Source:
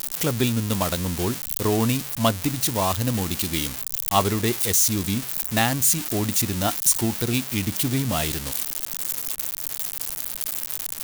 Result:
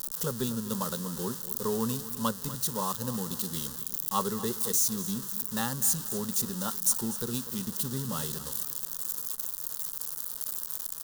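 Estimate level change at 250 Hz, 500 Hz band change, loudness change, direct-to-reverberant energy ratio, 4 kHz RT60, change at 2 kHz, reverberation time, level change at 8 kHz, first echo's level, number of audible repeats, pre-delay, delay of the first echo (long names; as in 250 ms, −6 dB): −8.5 dB, −8.5 dB, −7.5 dB, no reverb audible, no reverb audible, −14.0 dB, no reverb audible, −6.5 dB, −15.0 dB, 3, no reverb audible, 245 ms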